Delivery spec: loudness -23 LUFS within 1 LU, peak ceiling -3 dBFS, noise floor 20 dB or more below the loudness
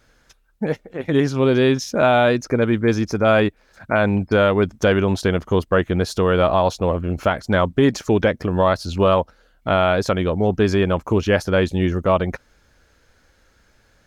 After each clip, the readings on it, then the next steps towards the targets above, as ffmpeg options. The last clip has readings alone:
loudness -19.0 LUFS; peak level -6.0 dBFS; loudness target -23.0 LUFS
-> -af "volume=0.631"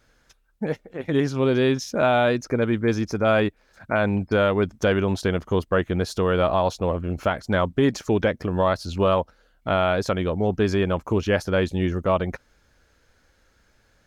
loudness -23.0 LUFS; peak level -10.0 dBFS; noise floor -63 dBFS

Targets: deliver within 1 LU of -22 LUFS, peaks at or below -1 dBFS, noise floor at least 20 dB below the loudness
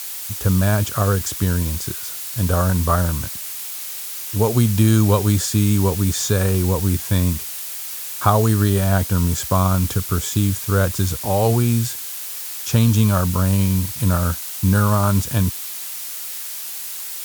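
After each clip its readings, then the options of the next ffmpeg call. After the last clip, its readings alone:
noise floor -30 dBFS; noise floor target -40 dBFS; loudness -19.5 LUFS; peak level -1.0 dBFS; loudness target -22.0 LUFS
-> -af "afftdn=nr=10:nf=-30"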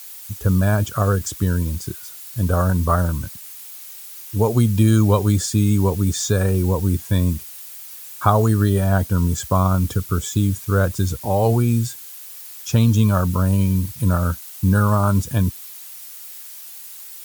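noise floor -38 dBFS; noise floor target -40 dBFS
-> -af "afftdn=nr=6:nf=-38"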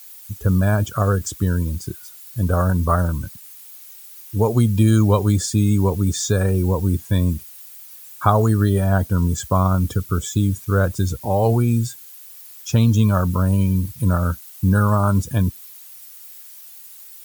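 noise floor -41 dBFS; loudness -19.5 LUFS; peak level -1.5 dBFS; loudness target -22.0 LUFS
-> -af "volume=0.75"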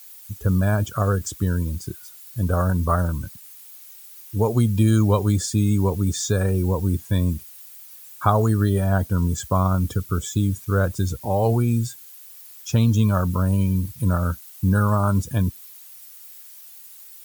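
loudness -22.0 LUFS; peak level -4.0 dBFS; noise floor -44 dBFS

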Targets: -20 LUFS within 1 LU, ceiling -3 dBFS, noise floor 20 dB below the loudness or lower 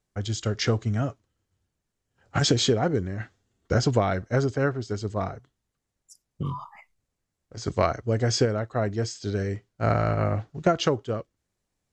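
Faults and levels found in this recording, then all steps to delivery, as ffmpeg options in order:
loudness -26.5 LUFS; peak level -7.5 dBFS; loudness target -20.0 LUFS
-> -af "volume=2.11,alimiter=limit=0.708:level=0:latency=1"

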